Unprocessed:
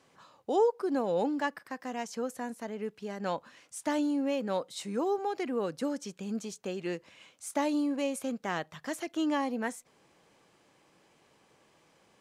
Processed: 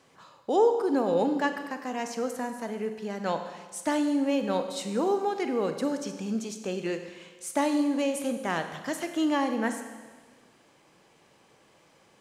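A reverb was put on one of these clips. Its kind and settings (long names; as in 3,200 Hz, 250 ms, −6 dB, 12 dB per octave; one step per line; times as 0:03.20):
four-comb reverb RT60 1.4 s, combs from 32 ms, DRR 7 dB
level +3.5 dB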